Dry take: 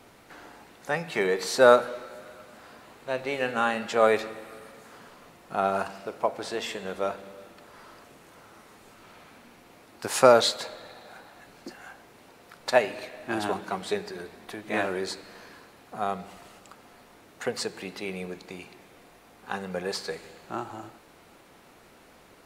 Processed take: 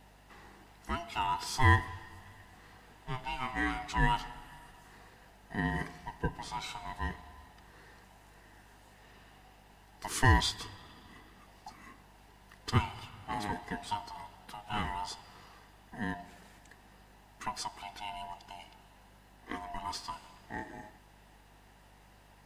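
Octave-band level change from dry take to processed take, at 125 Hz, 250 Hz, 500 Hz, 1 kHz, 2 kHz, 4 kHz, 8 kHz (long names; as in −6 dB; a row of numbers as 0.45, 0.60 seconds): +8.5, −5.0, −21.0, −5.0, −4.5, −6.0, −7.0 decibels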